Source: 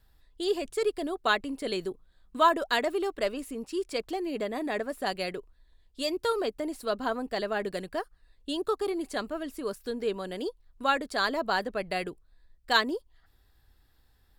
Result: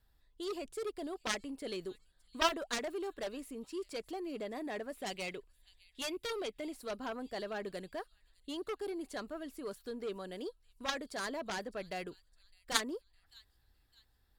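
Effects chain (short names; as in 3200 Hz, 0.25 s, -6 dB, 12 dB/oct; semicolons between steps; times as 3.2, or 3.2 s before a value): spectral gain 4.96–6.73, 2000–4000 Hz +8 dB; thin delay 0.609 s, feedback 40%, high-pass 4400 Hz, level -17.5 dB; added harmonics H 3 -8 dB, 7 -30 dB, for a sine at -9 dBFS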